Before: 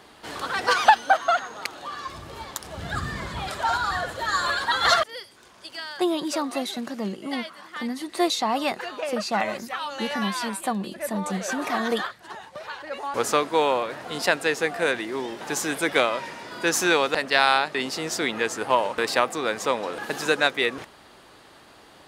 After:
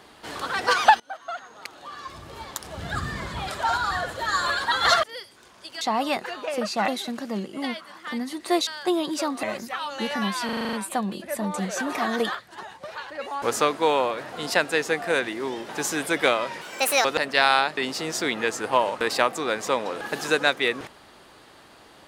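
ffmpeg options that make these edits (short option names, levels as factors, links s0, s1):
-filter_complex "[0:a]asplit=15[s0][s1][s2][s3][s4][s5][s6][s7][s8][s9][s10][s11][s12][s13][s14];[s0]atrim=end=1,asetpts=PTS-STARTPTS,afade=t=out:st=0.996:d=0.004:c=hsin:silence=0.0668344[s15];[s1]atrim=start=1:end=5.812,asetpts=PTS-STARTPTS,afade=t=in:d=1.61:silence=0.0668344[s16];[s2]atrim=start=8.358:end=9.432[s17];[s3]atrim=start=6.568:end=8.362[s18];[s4]atrim=start=5.808:end=6.572[s19];[s5]atrim=start=9.428:end=10.492[s20];[s6]atrim=start=10.448:end=10.492[s21];[s7]atrim=start=10.448:end=10.492[s22];[s8]atrim=start=10.448:end=10.492[s23];[s9]atrim=start=10.448:end=10.492[s24];[s10]atrim=start=10.448:end=10.492[s25];[s11]atrim=start=10.448:end=10.492[s26];[s12]atrim=start=10.448:end=16.334[s27];[s13]atrim=start=16.33:end=17.02,asetpts=PTS-STARTPTS,asetrate=69678,aresample=44100[s28];[s14]atrim=start=17.016[s29];[s15][s16]concat=n=2:v=0:a=1[s30];[s30][s17]acrossfade=d=0.004:c1=hsin:c2=hsin[s31];[s31][s18]acrossfade=d=0.004:c1=hsin:c2=hsin[s32];[s32][s19]acrossfade=d=0.004:c1=hsin:c2=hsin[s33];[s33][s20]acrossfade=d=0.004:c1=hsin:c2=hsin[s34];[s34][s21]acrossfade=d=0.004:c1=hsin:c2=hsin[s35];[s35][s22]acrossfade=d=0.004:c1=hsin:c2=hsin[s36];[s36][s23]acrossfade=d=0.004:c1=hsin:c2=hsin[s37];[s37][s24]acrossfade=d=0.004:c1=hsin:c2=hsin[s38];[s38][s25]acrossfade=d=0.004:c1=hsin:c2=hsin[s39];[s39][s26]acrossfade=d=0.004:c1=hsin:c2=hsin[s40];[s40][s27]acrossfade=d=0.004:c1=hsin:c2=hsin[s41];[s41][s28]acrossfade=d=0.004:c1=hsin:c2=hsin[s42];[s42][s29]acrossfade=d=0.004:c1=hsin:c2=hsin"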